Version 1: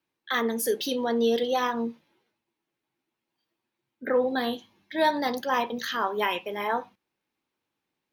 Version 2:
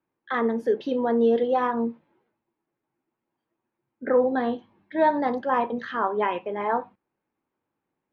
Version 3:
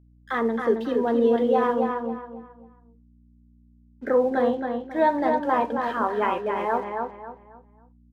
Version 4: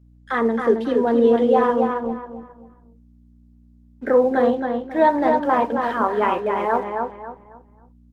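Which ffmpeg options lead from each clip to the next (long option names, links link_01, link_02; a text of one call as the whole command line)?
ffmpeg -i in.wav -af "lowpass=1400,volume=3.5dB" out.wav
ffmpeg -i in.wav -filter_complex "[0:a]aeval=exprs='sgn(val(0))*max(abs(val(0))-0.002,0)':channel_layout=same,aeval=exprs='val(0)+0.002*(sin(2*PI*60*n/s)+sin(2*PI*2*60*n/s)/2+sin(2*PI*3*60*n/s)/3+sin(2*PI*4*60*n/s)/4+sin(2*PI*5*60*n/s)/5)':channel_layout=same,asplit=2[link_01][link_02];[link_02]adelay=271,lowpass=frequency=3100:poles=1,volume=-4dB,asplit=2[link_03][link_04];[link_04]adelay=271,lowpass=frequency=3100:poles=1,volume=0.32,asplit=2[link_05][link_06];[link_06]adelay=271,lowpass=frequency=3100:poles=1,volume=0.32,asplit=2[link_07][link_08];[link_08]adelay=271,lowpass=frequency=3100:poles=1,volume=0.32[link_09];[link_03][link_05][link_07][link_09]amix=inputs=4:normalize=0[link_10];[link_01][link_10]amix=inputs=2:normalize=0" out.wav
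ffmpeg -i in.wav -af "volume=4.5dB" -ar 48000 -c:a libopus -b:a 20k out.opus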